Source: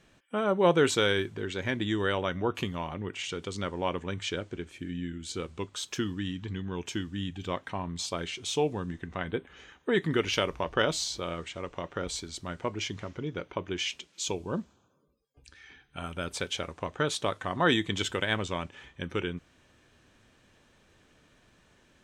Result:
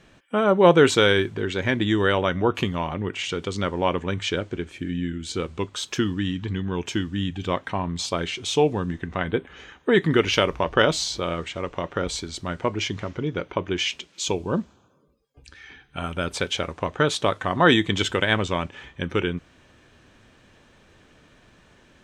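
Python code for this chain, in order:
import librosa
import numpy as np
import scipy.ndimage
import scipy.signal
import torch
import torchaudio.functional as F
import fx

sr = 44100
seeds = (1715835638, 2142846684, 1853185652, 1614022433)

y = fx.high_shelf(x, sr, hz=6700.0, db=-7.5)
y = F.gain(torch.from_numpy(y), 8.0).numpy()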